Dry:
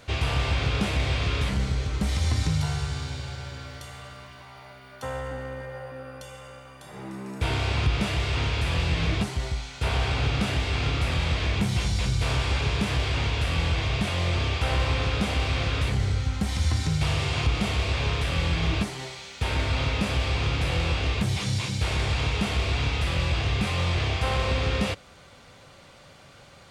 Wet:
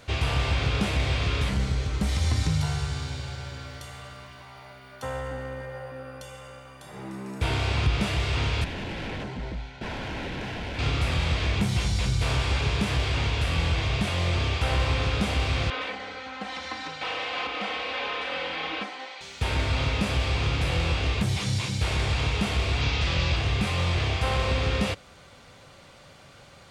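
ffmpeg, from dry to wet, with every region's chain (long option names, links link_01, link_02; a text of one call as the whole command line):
ffmpeg -i in.wav -filter_complex "[0:a]asettb=1/sr,asplit=3[link_01][link_02][link_03];[link_01]atrim=end=8.644[link_04];[link_02]atrim=start=8.64:end=10.79,asetpts=PTS-STARTPTS,afade=type=in:duration=0.004:curve=qsin,afade=type=out:start_time=2.146:duration=0.004:curve=qsin,aeval=exprs='0.0447*(abs(mod(val(0)/0.0447+3,4)-2)-1)':channel_layout=same,adynamicsmooth=sensitivity=2:basefreq=2400,asuperstop=centerf=1200:order=4:qfactor=6.3[link_05];[link_03]atrim=start=10.786[link_06];[link_04][link_05]acrossfade=duration=0.004:curve1=hsin:curve2=qsin[link_07];[link_07][link_06]acrossfade=duration=0.004:curve1=qsin:curve2=hsin,asettb=1/sr,asplit=3[link_08][link_09][link_10];[link_08]atrim=end=15.704[link_11];[link_09]atrim=start=15.7:end=19.21,asetpts=PTS-STARTPTS,afade=type=in:duration=0.004:curve=qsin,afade=type=out:start_time=3.506:duration=0.004:curve=qsin,highpass=480,lowpass=3000,aecho=1:1:3.9:0.86,atrim=end_sample=154791[link_12];[link_10]atrim=start=19.206[link_13];[link_11][link_12]acrossfade=duration=0.004:curve1=hsin:curve2=qsin[link_14];[link_14][link_13]acrossfade=duration=0.004:curve1=qsin:curve2=hsin,asettb=1/sr,asplit=3[link_15][link_16][link_17];[link_15]atrim=end=22.814[link_18];[link_16]atrim=start=22.81:end=23.36,asetpts=PTS-STARTPTS,afade=type=in:duration=0.004:curve=qsin,afade=type=out:start_time=0.546:duration=0.004:curve=qsin,lowpass=frequency=6200:width=0.5412,lowpass=frequency=6200:width=1.3066,highshelf=frequency=4000:gain=7.5[link_19];[link_17]atrim=start=23.356[link_20];[link_18][link_19]acrossfade=duration=0.004:curve1=hsin:curve2=qsin[link_21];[link_21][link_20]acrossfade=duration=0.004:curve1=qsin:curve2=hsin" out.wav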